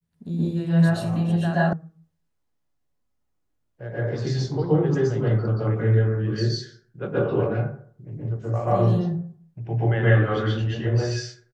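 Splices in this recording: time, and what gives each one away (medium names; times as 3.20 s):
1.73 s: sound stops dead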